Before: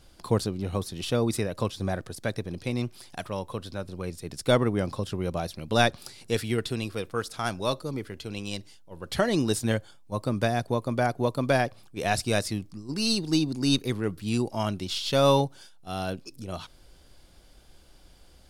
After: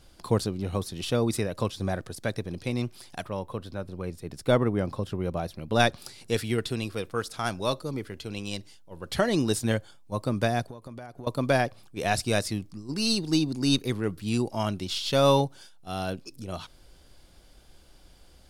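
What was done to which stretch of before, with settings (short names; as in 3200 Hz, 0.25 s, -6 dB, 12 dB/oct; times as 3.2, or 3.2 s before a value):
3.22–5.8 bell 6900 Hz -7.5 dB 2.6 oct
10.63–11.27 compressor 16:1, threshold -37 dBFS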